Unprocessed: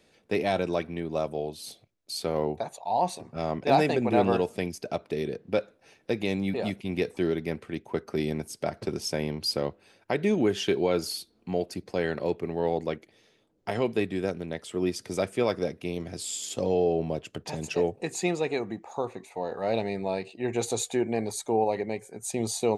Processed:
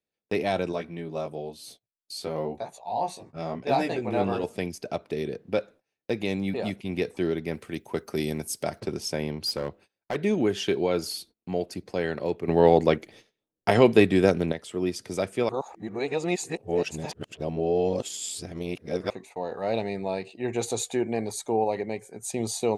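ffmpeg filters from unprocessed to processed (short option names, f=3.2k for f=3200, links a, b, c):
-filter_complex "[0:a]asettb=1/sr,asplit=3[a][b][c];[a]atrim=end=0.724[d];[b]atrim=start=0.72:end=4.44,asetpts=PTS-STARTPTS,afade=t=in:d=0.004:c=qsin,afade=t=out:st=3.716:d=0.004:c=qsin,flanger=delay=16:depth=4.2:speed=1[e];[c]atrim=start=4.436[f];[d][e]acrossfade=d=0.004:c1=hsin:c2=qsin[g];[g][f]acrossfade=d=0.004:c1=qsin:c2=hsin,asettb=1/sr,asplit=3[h][i][j];[h]atrim=end=7.534[k];[i]atrim=start=7.53:end=8.8,asetpts=PTS-STARTPTS,afade=t=in:d=0.004:c=qsin,afade=t=out:st=1.266:d=0.004:c=qsin,aemphasis=mode=production:type=50kf[l];[j]atrim=start=8.796[m];[k][l]acrossfade=d=0.004:c1=hsin:c2=qsin[n];[n][m]acrossfade=d=0.004:c1=qsin:c2=hsin,asettb=1/sr,asplit=3[o][p][q];[o]atrim=end=9.464[r];[p]atrim=start=9.46:end=10.16,asetpts=PTS-STARTPTS,afade=t=in:d=0.004:c=qsin,afade=t=out:st=0.696:d=0.004:c=qsin,asoftclip=type=hard:threshold=-23dB[s];[q]atrim=start=10.156[t];[r][s]acrossfade=d=0.004:c1=hsin:c2=qsin[u];[u][t]acrossfade=d=0.004:c1=qsin:c2=hsin,asplit=5[v][w][x][y][z];[v]atrim=end=12.482[aa];[w]atrim=start=12.478:end=14.522,asetpts=PTS-STARTPTS,volume=9.5dB[ab];[x]atrim=start=14.518:end=15.492[ac];[y]atrim=start=15.488:end=19.102,asetpts=PTS-STARTPTS,areverse[ad];[z]atrim=start=19.098[ae];[aa][ab]acrossfade=d=0.004:c1=hsin:c2=hsin[af];[af][ac]acrossfade=d=0.004:c1=hsin:c2=hsin[ag];[ag][ad]acrossfade=d=0.004:c1=hsin:c2=hsin[ah];[ah][ae]acrossfade=d=0.004:c1=hsin:c2=hsin,agate=range=-28dB:threshold=-49dB:ratio=16:detection=peak"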